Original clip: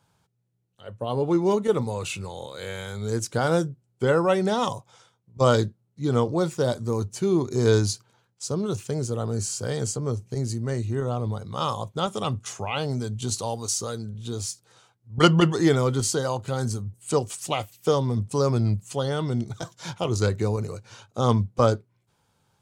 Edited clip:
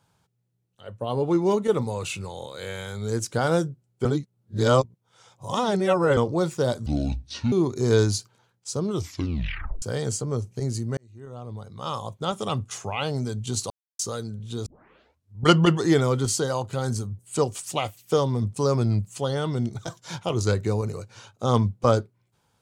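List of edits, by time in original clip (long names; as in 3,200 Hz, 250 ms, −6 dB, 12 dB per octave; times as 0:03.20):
0:04.05–0:06.17: reverse
0:06.86–0:07.27: play speed 62%
0:08.65: tape stop 0.92 s
0:10.72–0:12.22: fade in linear
0:13.45–0:13.74: silence
0:14.41: tape start 0.75 s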